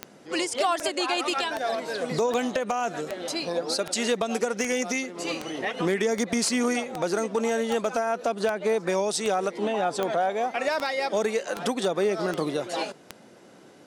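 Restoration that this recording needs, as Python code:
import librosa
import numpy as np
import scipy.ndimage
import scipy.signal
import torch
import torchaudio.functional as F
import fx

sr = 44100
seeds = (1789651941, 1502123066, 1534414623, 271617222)

y = fx.fix_declip(x, sr, threshold_db=-16.0)
y = fx.fix_declick_ar(y, sr, threshold=10.0)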